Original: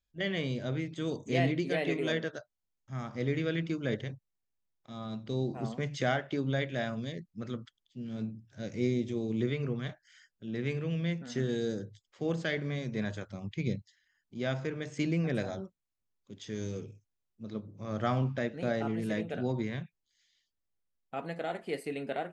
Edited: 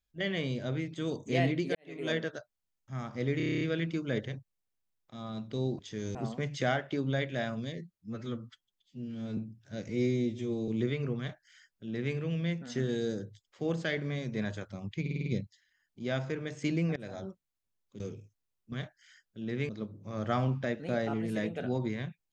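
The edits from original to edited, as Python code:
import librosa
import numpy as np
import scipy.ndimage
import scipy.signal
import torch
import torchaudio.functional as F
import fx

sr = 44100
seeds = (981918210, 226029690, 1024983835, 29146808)

y = fx.edit(x, sr, fx.fade_in_span(start_s=1.75, length_s=0.36, curve='qua'),
    fx.stutter(start_s=3.37, slice_s=0.03, count=9),
    fx.stretch_span(start_s=7.17, length_s=1.07, factor=1.5),
    fx.stretch_span(start_s=8.75, length_s=0.53, factor=1.5),
    fx.duplicate(start_s=9.78, length_s=0.97, to_s=17.43),
    fx.stutter(start_s=13.61, slice_s=0.05, count=6),
    fx.fade_in_from(start_s=15.31, length_s=0.33, floor_db=-23.0),
    fx.move(start_s=16.35, length_s=0.36, to_s=5.55), tone=tone)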